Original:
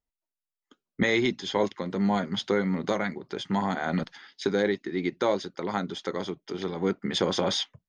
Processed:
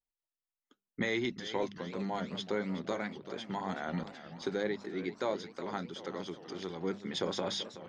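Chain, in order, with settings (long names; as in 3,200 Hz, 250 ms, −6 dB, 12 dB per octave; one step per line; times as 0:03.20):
tape wow and flutter 17 cents
0:06.26–0:06.79: high-shelf EQ 4,500 Hz +8.5 dB
pitch vibrato 0.44 Hz 36 cents
mains-hum notches 50/100/150/200 Hz
feedback echo with a swinging delay time 380 ms, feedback 63%, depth 160 cents, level −13.5 dB
level −8.5 dB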